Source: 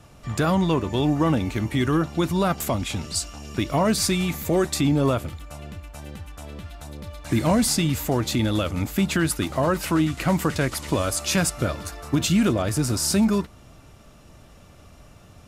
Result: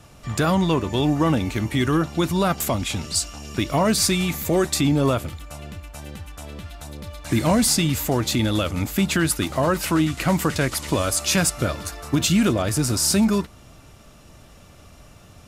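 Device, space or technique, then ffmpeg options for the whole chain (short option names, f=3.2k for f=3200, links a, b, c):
exciter from parts: -filter_complex "[0:a]asplit=2[a][b];[b]highpass=f=2.7k:p=1,asoftclip=type=tanh:threshold=-18.5dB,volume=-6dB[c];[a][c]amix=inputs=2:normalize=0,volume=1dB"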